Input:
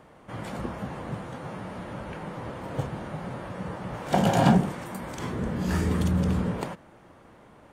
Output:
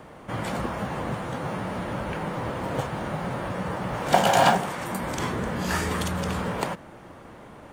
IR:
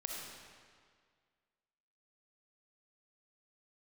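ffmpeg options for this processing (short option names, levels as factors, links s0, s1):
-filter_complex "[0:a]acrossover=split=550|1100[s0][s1][s2];[s0]acompressor=threshold=0.0158:ratio=6[s3];[s1]acrusher=bits=6:mode=log:mix=0:aa=0.000001[s4];[s3][s4][s2]amix=inputs=3:normalize=0,volume=2.37"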